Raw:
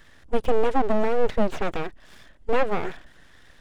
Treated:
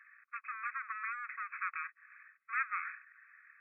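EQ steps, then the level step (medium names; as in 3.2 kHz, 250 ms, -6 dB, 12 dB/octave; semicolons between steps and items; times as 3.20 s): brick-wall FIR band-pass 1.1–2.6 kHz; -2.0 dB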